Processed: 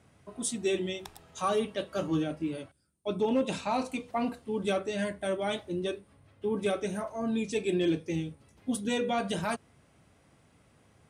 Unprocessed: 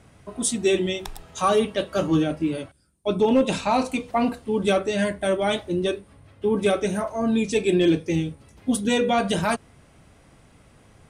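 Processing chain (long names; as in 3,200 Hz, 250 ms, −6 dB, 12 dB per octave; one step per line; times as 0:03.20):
high-pass filter 71 Hz
level −8.5 dB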